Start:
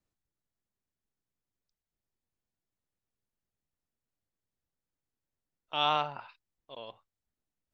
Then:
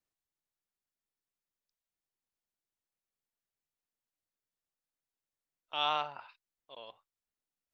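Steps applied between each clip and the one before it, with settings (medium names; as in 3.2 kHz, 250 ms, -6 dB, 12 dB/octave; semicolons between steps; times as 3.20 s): bass shelf 310 Hz -11.5 dB; trim -2.5 dB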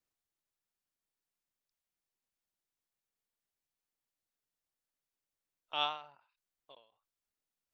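endings held to a fixed fall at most 110 dB/s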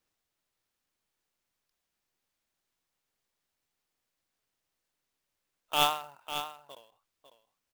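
tracing distortion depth 0.026 ms; delay 549 ms -10 dB; sampling jitter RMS 0.023 ms; trim +8 dB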